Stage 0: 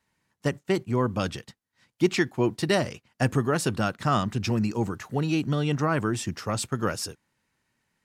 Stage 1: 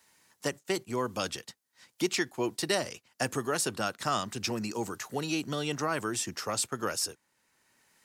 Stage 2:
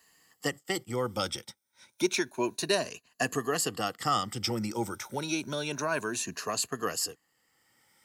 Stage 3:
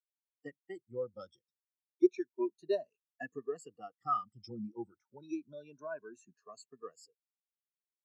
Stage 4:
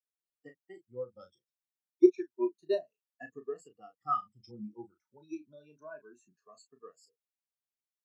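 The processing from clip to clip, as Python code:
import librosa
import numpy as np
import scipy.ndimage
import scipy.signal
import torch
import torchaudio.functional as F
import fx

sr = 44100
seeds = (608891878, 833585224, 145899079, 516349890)

y1 = fx.bass_treble(x, sr, bass_db=-11, treble_db=9)
y1 = fx.band_squash(y1, sr, depth_pct=40)
y1 = F.gain(torch.from_numpy(y1), -4.0).numpy()
y2 = fx.spec_ripple(y1, sr, per_octave=1.5, drift_hz=0.29, depth_db=12)
y2 = F.gain(torch.from_numpy(y2), -1.0).numpy()
y3 = fx.spectral_expand(y2, sr, expansion=2.5)
y3 = F.gain(torch.from_numpy(y3), -4.5).numpy()
y4 = fx.doubler(y3, sr, ms=33.0, db=-8.0)
y4 = fx.upward_expand(y4, sr, threshold_db=-42.0, expansion=1.5)
y4 = F.gain(torch.from_numpy(y4), 5.5).numpy()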